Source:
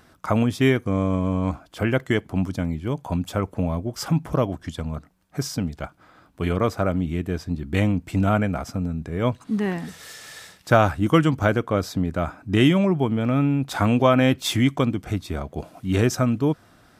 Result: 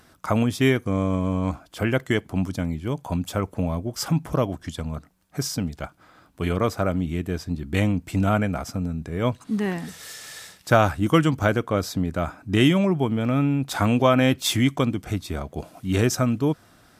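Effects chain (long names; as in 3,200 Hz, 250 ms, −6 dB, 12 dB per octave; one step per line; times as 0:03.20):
parametric band 13,000 Hz +5 dB 2.3 octaves
level −1 dB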